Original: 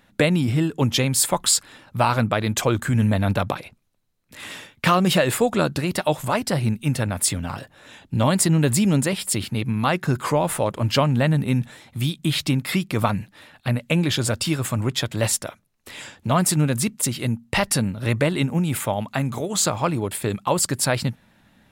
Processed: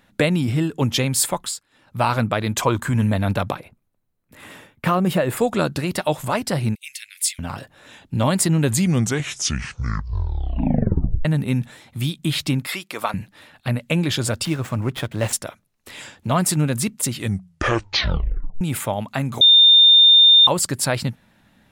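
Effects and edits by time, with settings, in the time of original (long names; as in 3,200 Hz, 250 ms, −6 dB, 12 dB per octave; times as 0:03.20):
0:01.25–0:02.05: duck −20 dB, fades 0.35 s
0:02.58–0:03.02: parametric band 1,000 Hz +11.5 dB 0.25 octaves
0:03.56–0:05.37: parametric band 4,900 Hz −11 dB 2.4 octaves
0:06.75–0:07.39: elliptic high-pass filter 2,100 Hz, stop band 60 dB
0:08.59: tape stop 2.66 s
0:12.67–0:13.14: Bessel high-pass filter 610 Hz
0:14.45–0:15.33: running median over 9 samples
0:17.12: tape stop 1.49 s
0:19.41–0:20.47: beep over 3,620 Hz −7.5 dBFS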